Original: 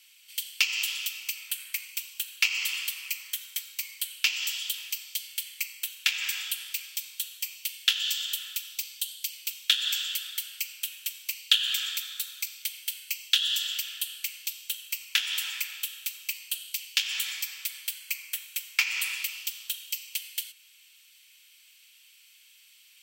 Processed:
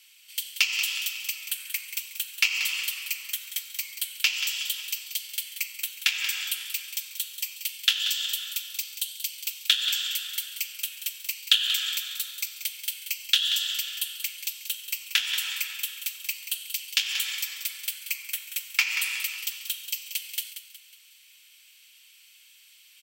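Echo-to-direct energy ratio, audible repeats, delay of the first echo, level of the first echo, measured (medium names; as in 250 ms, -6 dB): -9.5 dB, 4, 183 ms, -10.5 dB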